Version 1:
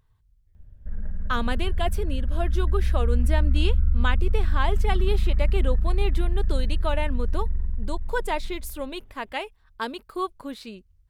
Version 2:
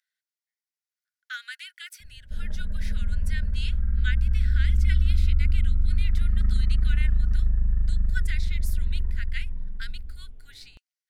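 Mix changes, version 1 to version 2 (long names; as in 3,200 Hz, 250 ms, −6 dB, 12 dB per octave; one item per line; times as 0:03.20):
speech: add Chebyshev high-pass with heavy ripple 1,400 Hz, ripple 6 dB
background: entry +1.45 s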